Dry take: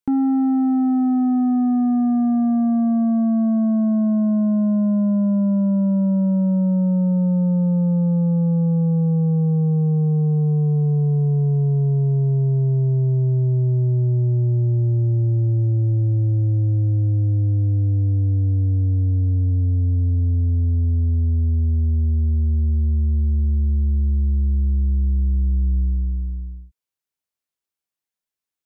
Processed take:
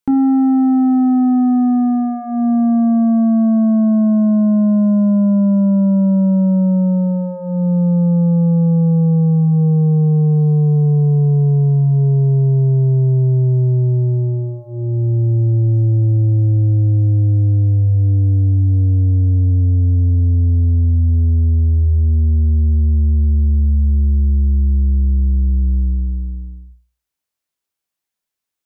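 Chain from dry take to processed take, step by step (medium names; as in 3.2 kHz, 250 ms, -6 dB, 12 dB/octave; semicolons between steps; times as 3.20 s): hum notches 60/120/180/240/300/360/420/480 Hz; trim +5.5 dB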